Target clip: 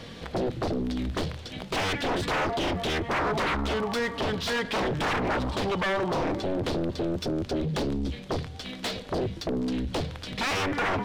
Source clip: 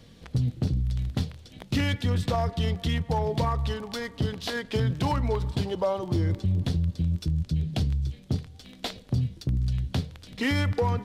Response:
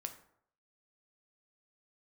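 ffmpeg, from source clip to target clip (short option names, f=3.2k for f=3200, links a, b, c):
-filter_complex "[0:a]aeval=exprs='0.15*sin(PI/2*3.98*val(0)/0.15)':c=same,asplit=2[a][b];[b]highpass=f=720:p=1,volume=12dB,asoftclip=type=tanh:threshold=-16dB[c];[a][c]amix=inputs=2:normalize=0,lowpass=f=2.2k:p=1,volume=-6dB,volume=-5.5dB"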